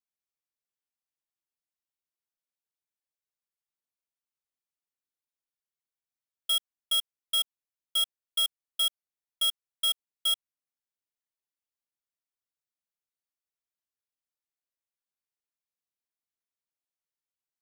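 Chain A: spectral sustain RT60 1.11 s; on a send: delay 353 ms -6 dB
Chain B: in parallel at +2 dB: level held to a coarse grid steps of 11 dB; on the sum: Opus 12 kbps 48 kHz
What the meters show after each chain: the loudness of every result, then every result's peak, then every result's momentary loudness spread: -25.5 LUFS, -26.0 LUFS; -17.5 dBFS, -14.0 dBFS; 6 LU, 3 LU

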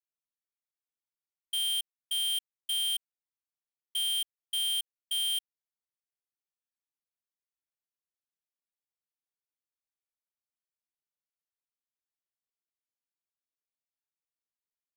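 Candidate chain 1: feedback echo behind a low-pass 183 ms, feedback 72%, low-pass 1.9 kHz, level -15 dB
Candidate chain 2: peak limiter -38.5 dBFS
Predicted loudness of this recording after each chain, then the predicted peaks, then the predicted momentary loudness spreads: -30.0 LUFS, -38.5 LUFS; -29.0 dBFS, -38.5 dBFS; 5 LU, 5 LU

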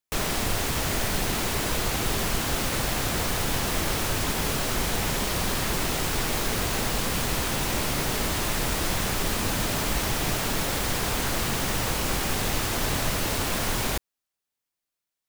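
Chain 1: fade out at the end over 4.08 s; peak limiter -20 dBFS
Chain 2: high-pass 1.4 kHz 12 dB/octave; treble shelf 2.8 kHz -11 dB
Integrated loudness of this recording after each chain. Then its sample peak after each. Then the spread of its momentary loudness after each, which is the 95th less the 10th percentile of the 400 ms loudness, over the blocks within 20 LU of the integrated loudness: -29.5 LUFS, -35.0 LUFS; -20.0 dBFS, -23.5 dBFS; 2 LU, 0 LU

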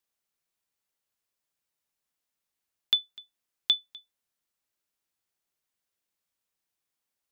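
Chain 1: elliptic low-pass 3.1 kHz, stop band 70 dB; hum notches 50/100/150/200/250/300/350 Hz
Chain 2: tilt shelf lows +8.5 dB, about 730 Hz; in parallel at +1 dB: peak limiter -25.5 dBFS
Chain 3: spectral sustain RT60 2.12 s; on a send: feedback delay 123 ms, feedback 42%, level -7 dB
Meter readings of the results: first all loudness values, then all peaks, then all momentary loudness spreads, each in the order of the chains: -35.0 LUFS, -31.5 LUFS, -20.0 LUFS; -18.0 dBFS, -14.0 dBFS, -11.5 dBFS; 2 LU, 19 LU, 17 LU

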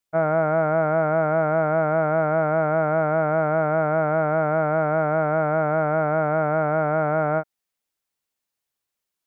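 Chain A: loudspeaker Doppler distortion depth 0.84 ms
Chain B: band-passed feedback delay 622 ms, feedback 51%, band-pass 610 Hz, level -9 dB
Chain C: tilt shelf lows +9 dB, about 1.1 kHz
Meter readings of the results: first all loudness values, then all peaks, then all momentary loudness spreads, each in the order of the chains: -22.0 LUFS, -21.5 LUFS, -17.0 LUFS; -10.0 dBFS, -8.5 dBFS, -6.0 dBFS; 1 LU, 11 LU, 1 LU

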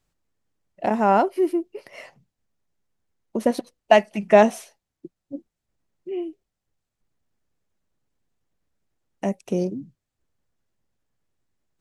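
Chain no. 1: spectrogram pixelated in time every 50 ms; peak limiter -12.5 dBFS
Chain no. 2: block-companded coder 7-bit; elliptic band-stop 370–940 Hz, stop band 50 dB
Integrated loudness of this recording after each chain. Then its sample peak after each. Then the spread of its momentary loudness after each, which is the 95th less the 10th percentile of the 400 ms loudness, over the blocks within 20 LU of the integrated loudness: -27.0 LUFS, -27.5 LUFS; -12.5 dBFS, -10.0 dBFS; 19 LU, 17 LU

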